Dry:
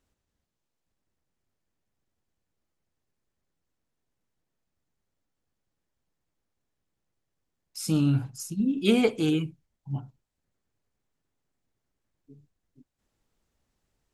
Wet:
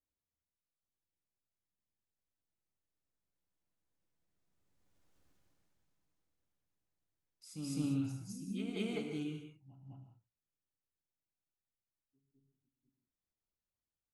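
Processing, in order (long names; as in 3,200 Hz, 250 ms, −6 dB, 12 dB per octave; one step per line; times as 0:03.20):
source passing by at 0:05.25, 14 m/s, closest 3.3 metres
backwards echo 207 ms −6 dB
reverb whose tail is shaped and stops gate 220 ms flat, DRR 4 dB
level +6 dB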